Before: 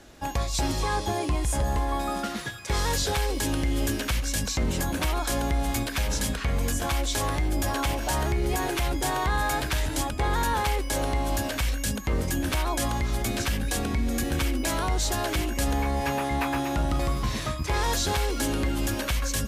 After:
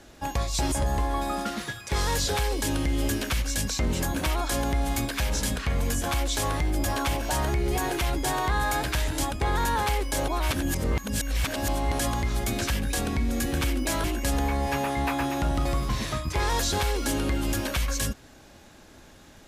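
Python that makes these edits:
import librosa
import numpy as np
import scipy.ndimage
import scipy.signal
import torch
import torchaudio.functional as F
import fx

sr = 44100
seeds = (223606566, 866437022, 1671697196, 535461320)

y = fx.edit(x, sr, fx.cut(start_s=0.72, length_s=0.78),
    fx.reverse_span(start_s=11.06, length_s=1.71),
    fx.cut(start_s=14.82, length_s=0.56), tone=tone)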